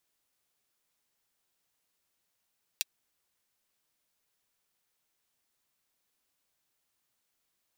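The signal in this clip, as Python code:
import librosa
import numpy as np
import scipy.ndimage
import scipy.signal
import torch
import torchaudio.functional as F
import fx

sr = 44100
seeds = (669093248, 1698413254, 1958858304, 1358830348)

y = fx.drum_hat(sr, length_s=0.24, from_hz=3000.0, decay_s=0.03)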